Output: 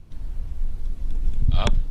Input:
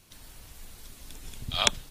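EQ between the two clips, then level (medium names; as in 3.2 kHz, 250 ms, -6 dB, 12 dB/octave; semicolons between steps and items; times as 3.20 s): tilt EQ -4.5 dB/octave; 0.0 dB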